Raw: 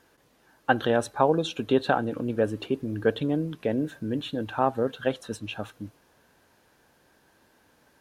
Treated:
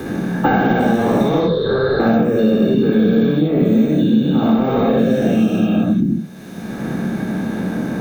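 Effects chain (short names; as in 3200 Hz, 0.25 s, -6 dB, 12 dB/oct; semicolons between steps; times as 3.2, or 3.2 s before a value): spectral dilation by 0.48 s; careless resampling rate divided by 2×, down none, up hold; soft clip -14.5 dBFS, distortion -11 dB; 1.4–2 EQ curve 100 Hz 0 dB, 250 Hz -28 dB, 500 Hz +2 dB, 720 Hz -20 dB, 1000 Hz -4 dB, 1700 Hz -3 dB, 2500 Hz -24 dB, 4100 Hz +10 dB, 7100 Hz -29 dB, 11000 Hz -13 dB; reverb RT60 0.20 s, pre-delay 57 ms, DRR -0.5 dB; three-band squash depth 100%; gain -11.5 dB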